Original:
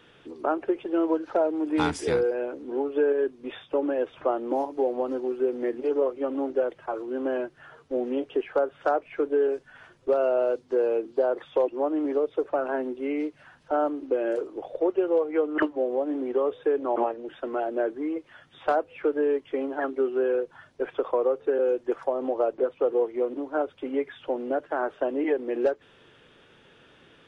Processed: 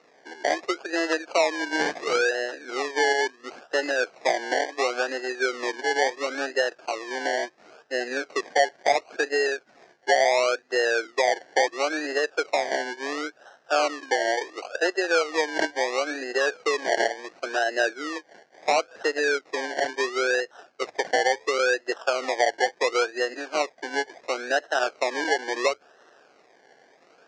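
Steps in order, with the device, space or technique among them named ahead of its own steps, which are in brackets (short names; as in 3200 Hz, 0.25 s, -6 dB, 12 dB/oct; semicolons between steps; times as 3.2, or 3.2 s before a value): circuit-bent sampling toy (decimation with a swept rate 27×, swing 60% 0.72 Hz; speaker cabinet 470–5800 Hz, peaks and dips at 700 Hz +5 dB, 1000 Hz -6 dB, 1600 Hz +8 dB, 3400 Hz -6 dB); bell 6100 Hz +4 dB 1 oct; notches 50/100 Hz; gain +2 dB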